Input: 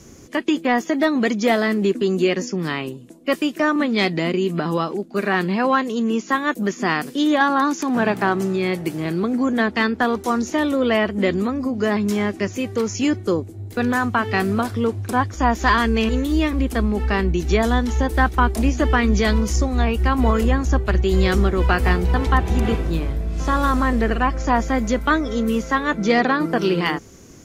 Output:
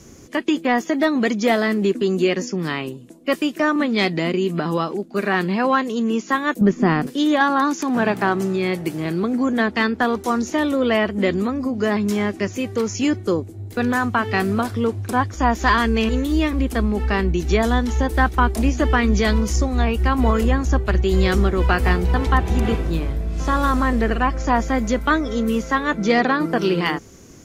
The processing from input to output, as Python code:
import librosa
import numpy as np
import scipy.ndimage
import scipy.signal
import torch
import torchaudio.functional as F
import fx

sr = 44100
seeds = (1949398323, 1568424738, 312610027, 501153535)

y = fx.tilt_eq(x, sr, slope=-3.5, at=(6.61, 7.07))